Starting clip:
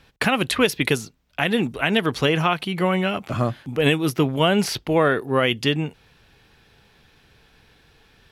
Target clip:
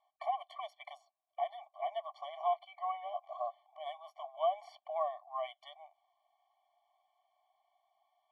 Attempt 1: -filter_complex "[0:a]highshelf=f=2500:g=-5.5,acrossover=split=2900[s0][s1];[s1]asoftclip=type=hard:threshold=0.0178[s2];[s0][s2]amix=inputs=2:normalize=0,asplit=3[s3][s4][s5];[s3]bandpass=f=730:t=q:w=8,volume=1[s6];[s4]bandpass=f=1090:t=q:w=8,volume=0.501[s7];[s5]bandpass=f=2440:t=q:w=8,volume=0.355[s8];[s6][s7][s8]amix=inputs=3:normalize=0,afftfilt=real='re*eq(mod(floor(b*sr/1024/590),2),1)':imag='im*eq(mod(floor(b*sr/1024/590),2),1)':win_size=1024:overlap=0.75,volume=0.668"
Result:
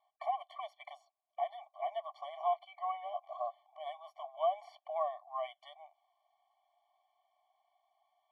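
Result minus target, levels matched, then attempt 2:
hard clipper: distortion +9 dB
-filter_complex "[0:a]highshelf=f=2500:g=-5.5,acrossover=split=2900[s0][s1];[s1]asoftclip=type=hard:threshold=0.0473[s2];[s0][s2]amix=inputs=2:normalize=0,asplit=3[s3][s4][s5];[s3]bandpass=f=730:t=q:w=8,volume=1[s6];[s4]bandpass=f=1090:t=q:w=8,volume=0.501[s7];[s5]bandpass=f=2440:t=q:w=8,volume=0.355[s8];[s6][s7][s8]amix=inputs=3:normalize=0,afftfilt=real='re*eq(mod(floor(b*sr/1024/590),2),1)':imag='im*eq(mod(floor(b*sr/1024/590),2),1)':win_size=1024:overlap=0.75,volume=0.668"

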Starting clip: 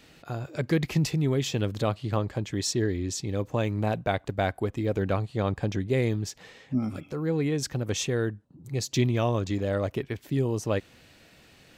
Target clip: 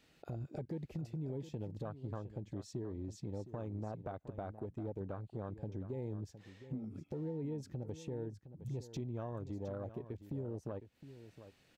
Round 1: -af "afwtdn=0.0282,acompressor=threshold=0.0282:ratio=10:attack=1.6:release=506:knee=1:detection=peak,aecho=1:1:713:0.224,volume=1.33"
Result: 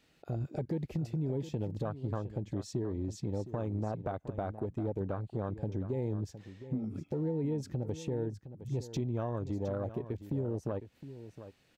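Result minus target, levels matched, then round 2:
compression: peak gain reduction -7 dB
-af "afwtdn=0.0282,acompressor=threshold=0.0112:ratio=10:attack=1.6:release=506:knee=1:detection=peak,aecho=1:1:713:0.224,volume=1.33"

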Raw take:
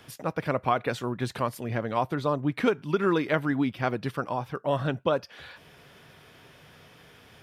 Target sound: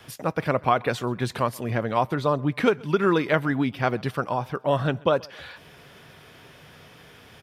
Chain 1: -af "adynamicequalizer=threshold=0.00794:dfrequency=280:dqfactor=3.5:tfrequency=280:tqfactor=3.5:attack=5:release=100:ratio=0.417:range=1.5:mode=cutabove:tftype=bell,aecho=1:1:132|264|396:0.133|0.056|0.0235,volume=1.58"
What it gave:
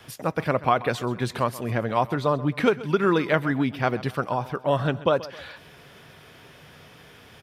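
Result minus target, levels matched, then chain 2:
echo-to-direct +8 dB
-af "adynamicequalizer=threshold=0.00794:dfrequency=280:dqfactor=3.5:tfrequency=280:tqfactor=3.5:attack=5:release=100:ratio=0.417:range=1.5:mode=cutabove:tftype=bell,aecho=1:1:132|264:0.0531|0.0223,volume=1.58"

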